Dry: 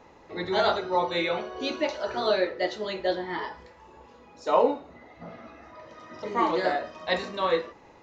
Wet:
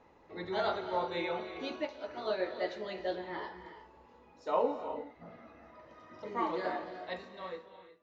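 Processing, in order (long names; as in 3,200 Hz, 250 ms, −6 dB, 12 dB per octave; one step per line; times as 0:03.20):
fade-out on the ending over 1.59 s
high-shelf EQ 6,000 Hz −11.5 dB
reverb whose tail is shaped and stops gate 390 ms rising, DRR 9 dB
0:01.85–0:02.40: expander for the loud parts 1.5 to 1, over −32 dBFS
level −8.5 dB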